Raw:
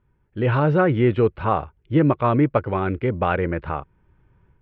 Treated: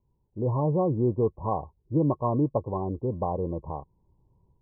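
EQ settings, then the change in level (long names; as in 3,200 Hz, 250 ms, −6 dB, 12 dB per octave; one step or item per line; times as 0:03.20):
Chebyshev low-pass filter 1,100 Hz, order 10
−6.0 dB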